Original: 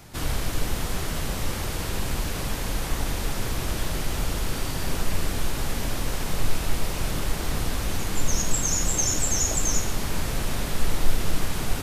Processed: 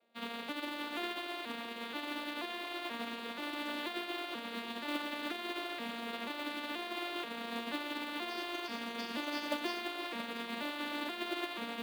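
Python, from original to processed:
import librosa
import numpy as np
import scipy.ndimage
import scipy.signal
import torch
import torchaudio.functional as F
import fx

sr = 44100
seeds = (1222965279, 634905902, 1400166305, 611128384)

p1 = fx.vocoder_arp(x, sr, chord='major triad', root=58, every_ms=482)
p2 = scipy.signal.sosfilt(scipy.signal.butter(8, 4000.0, 'lowpass', fs=sr, output='sos'), p1)
p3 = fx.tilt_eq(p2, sr, slope=4.5)
p4 = fx.dmg_noise_band(p3, sr, seeds[0], low_hz=330.0, high_hz=710.0, level_db=-56.0)
p5 = fx.quant_float(p4, sr, bits=2)
p6 = p5 + fx.echo_single(p5, sr, ms=677, db=-13.5, dry=0)
p7 = fx.upward_expand(p6, sr, threshold_db=-48.0, expansion=2.5)
y = p7 * librosa.db_to_amplitude(1.0)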